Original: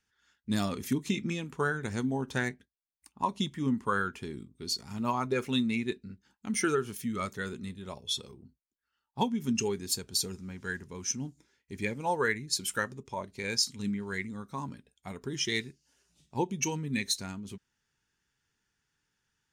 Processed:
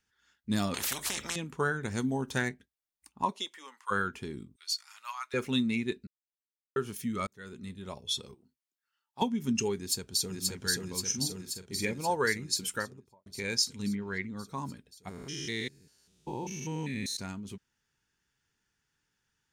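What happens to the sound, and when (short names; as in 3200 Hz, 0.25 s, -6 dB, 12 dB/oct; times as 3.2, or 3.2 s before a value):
0.74–1.36 spectral compressor 10:1
1.95–2.42 high shelf 5200 Hz +7 dB
3.3–3.9 HPF 310 Hz -> 1100 Hz 24 dB/oct
4.56–5.34 HPF 1300 Hz 24 dB/oct
6.07–6.76 mute
7.27–7.8 fade in
8.34–9.22 HPF 860 Hz 6 dB/oct
9.76–10.41 echo throw 0.53 s, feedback 70%, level -1 dB
11.04–11.91 doubler 43 ms -9 dB
12.61–13.26 studio fade out
13.95–14.37 LPF 3600 Hz
15.09–17.17 stepped spectrum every 0.2 s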